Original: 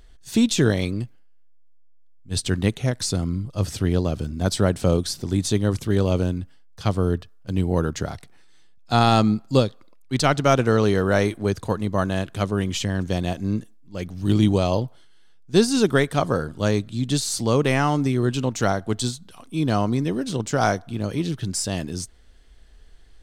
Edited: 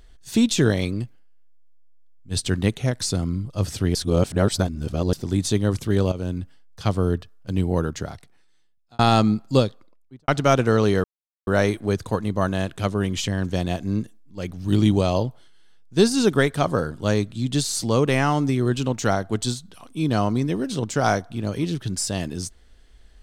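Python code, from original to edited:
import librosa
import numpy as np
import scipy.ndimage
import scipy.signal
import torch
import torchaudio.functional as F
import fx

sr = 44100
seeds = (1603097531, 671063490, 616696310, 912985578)

y = fx.studio_fade_out(x, sr, start_s=9.64, length_s=0.64)
y = fx.edit(y, sr, fx.reverse_span(start_s=3.95, length_s=1.18),
    fx.fade_in_from(start_s=6.12, length_s=0.27, floor_db=-14.5),
    fx.fade_out_span(start_s=7.65, length_s=1.34),
    fx.insert_silence(at_s=11.04, length_s=0.43), tone=tone)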